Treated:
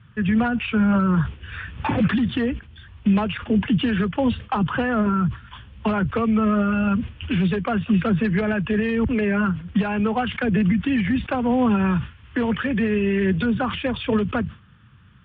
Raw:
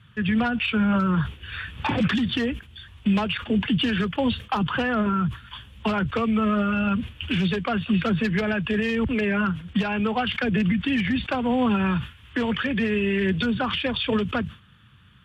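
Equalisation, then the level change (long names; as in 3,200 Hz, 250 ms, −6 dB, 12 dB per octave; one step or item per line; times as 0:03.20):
high-frequency loss of the air 440 metres
+3.5 dB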